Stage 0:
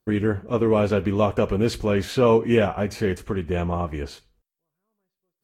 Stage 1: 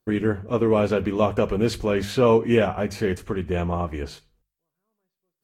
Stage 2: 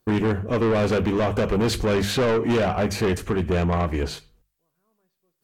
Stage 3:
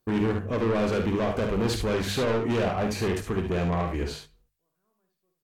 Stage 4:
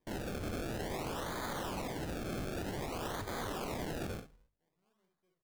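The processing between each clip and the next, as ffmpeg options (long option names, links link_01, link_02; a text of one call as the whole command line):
ffmpeg -i in.wav -af "bandreject=frequency=50:width_type=h:width=6,bandreject=frequency=100:width_type=h:width=6,bandreject=frequency=150:width_type=h:width=6,bandreject=frequency=200:width_type=h:width=6" out.wav
ffmpeg -i in.wav -af "alimiter=limit=-11.5dB:level=0:latency=1:release=148,asoftclip=type=tanh:threshold=-25dB,volume=7.5dB" out.wav
ffmpeg -i in.wav -af "aecho=1:1:52|71:0.422|0.422,volume=-5.5dB" out.wav
ffmpeg -i in.wav -af "aresample=16000,aeval=exprs='(mod(39.8*val(0)+1,2)-1)/39.8':channel_layout=same,aresample=44100,acrusher=samples=31:mix=1:aa=0.000001:lfo=1:lforange=31:lforate=0.53,volume=-2dB" out.wav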